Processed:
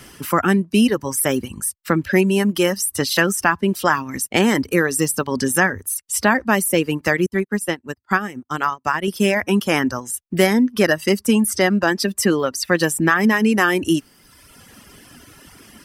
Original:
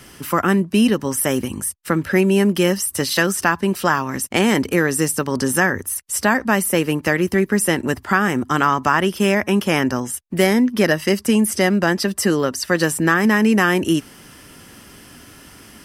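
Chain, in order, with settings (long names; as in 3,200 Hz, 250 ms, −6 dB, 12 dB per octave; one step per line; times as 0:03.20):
reverb reduction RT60 1.3 s
0:07.26–0:09.08: expander for the loud parts 2.5 to 1, over −35 dBFS
level +1 dB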